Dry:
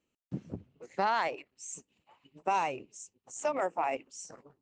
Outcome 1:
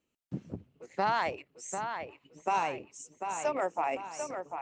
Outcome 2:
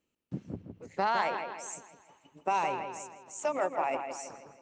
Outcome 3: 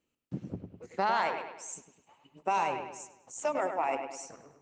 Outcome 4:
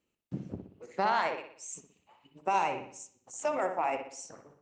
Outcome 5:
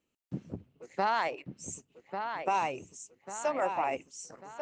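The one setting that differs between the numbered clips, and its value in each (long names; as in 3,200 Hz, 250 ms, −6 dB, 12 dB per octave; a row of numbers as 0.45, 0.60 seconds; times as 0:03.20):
delay with a low-pass on its return, delay time: 745, 161, 102, 61, 1,144 milliseconds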